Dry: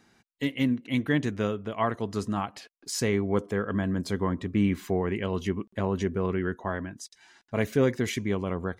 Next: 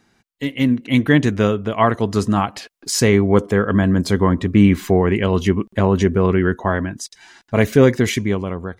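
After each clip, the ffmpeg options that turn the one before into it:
ffmpeg -i in.wav -af "lowshelf=frequency=72:gain=5.5,dynaudnorm=framelen=140:gausssize=9:maxgain=10dB,volume=2dB" out.wav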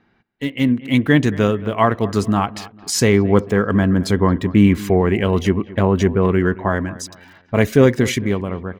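ffmpeg -i in.wav -filter_complex "[0:a]acrossover=split=3600[link_01][link_02];[link_01]aecho=1:1:223|446|669:0.119|0.0428|0.0154[link_03];[link_02]aeval=exprs='val(0)*gte(abs(val(0)),0.00562)':channel_layout=same[link_04];[link_03][link_04]amix=inputs=2:normalize=0" out.wav

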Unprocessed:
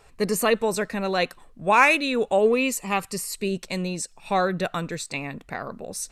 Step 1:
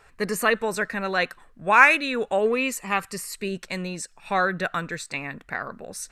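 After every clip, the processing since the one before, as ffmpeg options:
ffmpeg -i in.wav -af "equalizer=frequency=1600:width_type=o:width=0.93:gain=10.5,volume=-3.5dB" out.wav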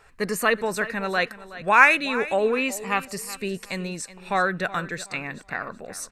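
ffmpeg -i in.wav -af "aecho=1:1:372|744|1116:0.158|0.046|0.0133" out.wav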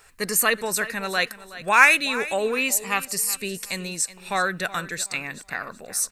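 ffmpeg -i in.wav -af "crystalizer=i=4:c=0,volume=-3dB" out.wav

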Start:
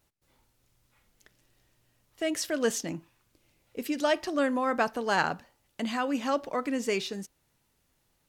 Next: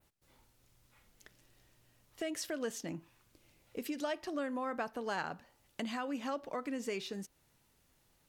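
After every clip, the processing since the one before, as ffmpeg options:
ffmpeg -i in.wav -af "adynamicequalizer=threshold=0.00447:dfrequency=6300:dqfactor=0.75:tfrequency=6300:tqfactor=0.75:attack=5:release=100:ratio=0.375:range=2:mode=cutabove:tftype=bell,acompressor=threshold=-41dB:ratio=2.5,volume=1dB" out.wav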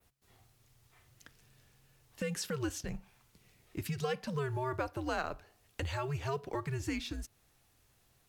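ffmpeg -i in.wav -filter_complex "[0:a]asplit=2[link_01][link_02];[link_02]acrusher=bits=5:mode=log:mix=0:aa=0.000001,volume=-11.5dB[link_03];[link_01][link_03]amix=inputs=2:normalize=0,afreqshift=-140" out.wav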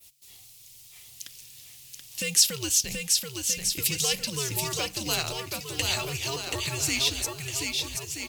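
ffmpeg -i in.wav -filter_complex "[0:a]aexciter=amount=5.4:drive=8.3:freq=2300,asplit=2[link_01][link_02];[link_02]aecho=0:1:730|1278|1688|1996|2227:0.631|0.398|0.251|0.158|0.1[link_03];[link_01][link_03]amix=inputs=2:normalize=0" out.wav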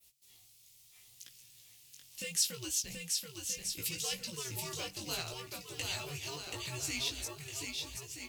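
ffmpeg -i in.wav -af "flanger=delay=16:depth=4.7:speed=0.73,volume=-7.5dB" out.wav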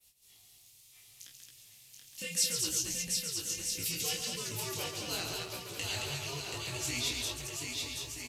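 ffmpeg -i in.wav -filter_complex "[0:a]asplit=2[link_01][link_02];[link_02]aecho=0:1:29.15|137|221.6:0.562|0.501|0.631[link_03];[link_01][link_03]amix=inputs=2:normalize=0,aresample=32000,aresample=44100" out.wav

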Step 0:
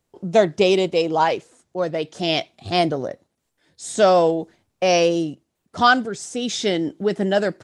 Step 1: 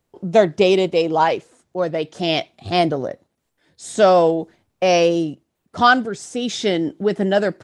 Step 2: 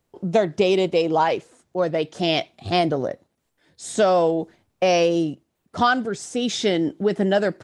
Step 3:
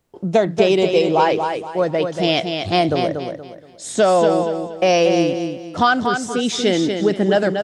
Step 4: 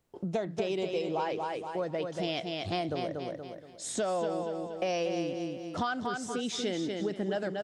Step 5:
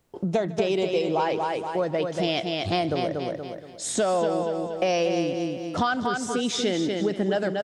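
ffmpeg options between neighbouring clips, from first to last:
ffmpeg -i in.wav -af "equalizer=frequency=7200:width_type=o:width=1.8:gain=-4,volume=2dB" out.wav
ffmpeg -i in.wav -af "acompressor=threshold=-15dB:ratio=4" out.wav
ffmpeg -i in.wav -af "aecho=1:1:236|472|708|944:0.501|0.16|0.0513|0.0164,volume=3dB" out.wav
ffmpeg -i in.wav -af "acompressor=threshold=-27dB:ratio=2.5,volume=-6.5dB" out.wav
ffmpeg -i in.wav -af "aecho=1:1:152:0.0944,volume=7.5dB" out.wav

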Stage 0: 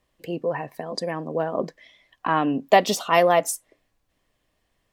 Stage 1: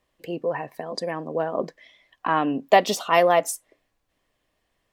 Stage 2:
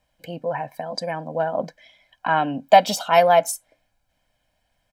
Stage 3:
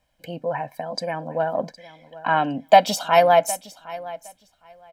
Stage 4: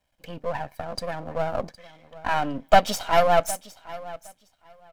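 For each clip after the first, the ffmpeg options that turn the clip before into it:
ffmpeg -i in.wav -af "bass=frequency=250:gain=-4,treble=frequency=4000:gain=-2" out.wav
ffmpeg -i in.wav -af "aecho=1:1:1.3:0.83" out.wav
ffmpeg -i in.wav -af "aecho=1:1:762|1524:0.126|0.0214" out.wav
ffmpeg -i in.wav -af "aeval=exprs='if(lt(val(0),0),0.251*val(0),val(0))':channel_layout=same" out.wav

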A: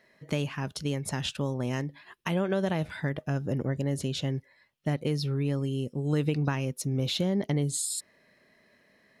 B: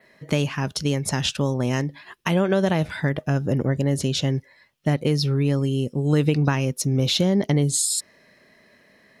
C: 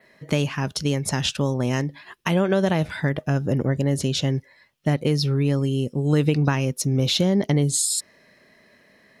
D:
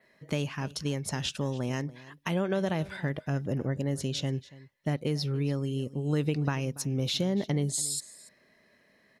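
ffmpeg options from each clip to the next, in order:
ffmpeg -i in.wav -af "adynamicequalizer=threshold=0.00282:dfrequency=5700:dqfactor=2.2:tfrequency=5700:tqfactor=2.2:attack=5:release=100:ratio=0.375:range=2.5:mode=boostabove:tftype=bell,volume=7.5dB" out.wav
ffmpeg -i in.wav -af anull out.wav
ffmpeg -i in.wav -af "aecho=1:1:285:0.106,volume=-8.5dB" out.wav

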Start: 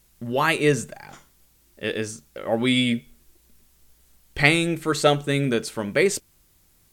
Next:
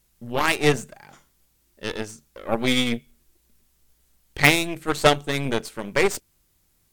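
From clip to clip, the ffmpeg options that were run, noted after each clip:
ffmpeg -i in.wav -af "aeval=exprs='0.794*(cos(1*acos(clip(val(0)/0.794,-1,1)))-cos(1*PI/2))+0.158*(cos(5*acos(clip(val(0)/0.794,-1,1)))-cos(5*PI/2))+0.251*(cos(6*acos(clip(val(0)/0.794,-1,1)))-cos(6*PI/2))+0.158*(cos(7*acos(clip(val(0)/0.794,-1,1)))-cos(7*PI/2))+0.251*(cos(8*acos(clip(val(0)/0.794,-1,1)))-cos(8*PI/2))':channel_layout=same,volume=-1dB" out.wav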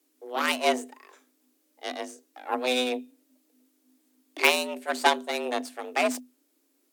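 ffmpeg -i in.wav -af "afreqshift=250,volume=-5dB" out.wav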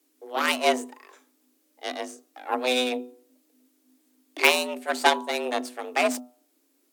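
ffmpeg -i in.wav -af "bandreject=frequency=122.9:width_type=h:width=4,bandreject=frequency=245.8:width_type=h:width=4,bandreject=frequency=368.7:width_type=h:width=4,bandreject=frequency=491.6:width_type=h:width=4,bandreject=frequency=614.5:width_type=h:width=4,bandreject=frequency=737.4:width_type=h:width=4,bandreject=frequency=860.3:width_type=h:width=4,bandreject=frequency=983.2:width_type=h:width=4,bandreject=frequency=1106.1:width_type=h:width=4,bandreject=frequency=1229:width_type=h:width=4,bandreject=frequency=1351.9:width_type=h:width=4,volume=2dB" out.wav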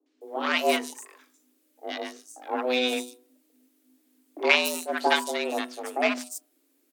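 ffmpeg -i in.wav -filter_complex "[0:a]acrossover=split=940|5600[link_01][link_02][link_03];[link_02]adelay=60[link_04];[link_03]adelay=210[link_05];[link_01][link_04][link_05]amix=inputs=3:normalize=0" out.wav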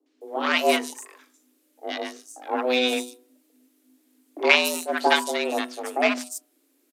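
ffmpeg -i in.wav -af "aresample=32000,aresample=44100,volume=3dB" out.wav

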